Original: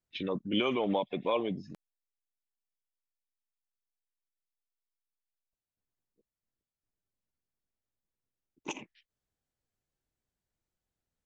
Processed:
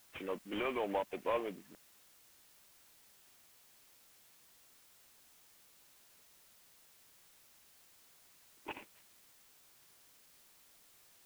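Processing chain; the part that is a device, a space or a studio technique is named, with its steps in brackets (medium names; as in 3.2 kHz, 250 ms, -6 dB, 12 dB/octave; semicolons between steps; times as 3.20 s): army field radio (band-pass 380–3400 Hz; CVSD coder 16 kbps; white noise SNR 18 dB); trim -3 dB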